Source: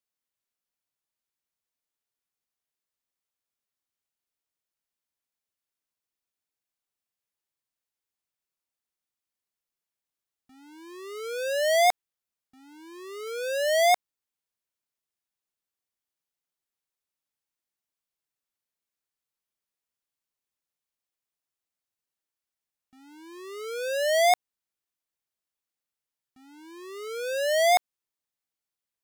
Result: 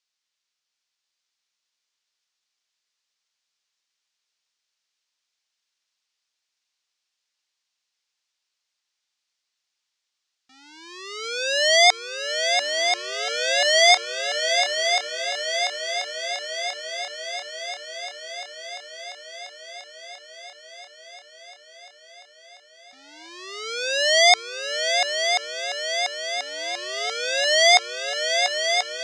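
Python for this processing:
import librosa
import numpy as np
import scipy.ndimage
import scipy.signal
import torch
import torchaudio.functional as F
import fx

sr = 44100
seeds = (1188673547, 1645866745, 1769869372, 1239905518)

p1 = scipy.signal.sosfilt(scipy.signal.butter(4, 5600.0, 'lowpass', fs=sr, output='sos'), x)
p2 = fx.tilt_eq(p1, sr, slope=5.0)
p3 = p2 + fx.echo_heads(p2, sr, ms=345, heads='second and third', feedback_pct=72, wet_db=-7.0, dry=0)
y = p3 * librosa.db_to_amplitude(4.0)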